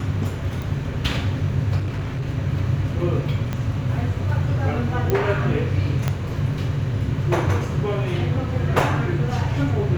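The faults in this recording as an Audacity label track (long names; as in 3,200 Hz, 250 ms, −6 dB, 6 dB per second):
0.620000	0.620000	click
1.780000	2.260000	clipping −22 dBFS
3.530000	3.530000	click −13 dBFS
5.100000	5.100000	click −8 dBFS
6.080000	6.080000	click −8 dBFS
8.800000	8.800000	drop-out 2.5 ms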